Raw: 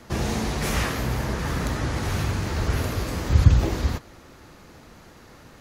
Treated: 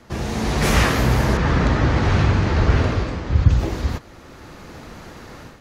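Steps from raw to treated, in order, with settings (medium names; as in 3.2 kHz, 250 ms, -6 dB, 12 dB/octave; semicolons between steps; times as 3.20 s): treble shelf 7.2 kHz -6.5 dB; level rider gain up to 11 dB; 1.37–3.49 s: distance through air 120 m; trim -1 dB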